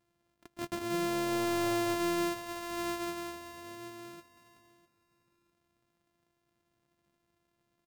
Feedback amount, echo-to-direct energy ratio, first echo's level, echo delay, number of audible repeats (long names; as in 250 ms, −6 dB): 22%, −17.0 dB, −17.0 dB, 652 ms, 2